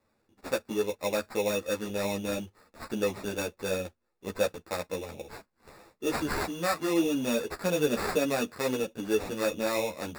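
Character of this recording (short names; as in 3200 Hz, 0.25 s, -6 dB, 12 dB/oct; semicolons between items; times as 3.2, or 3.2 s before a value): aliases and images of a low sample rate 3100 Hz, jitter 0%; a shimmering, thickened sound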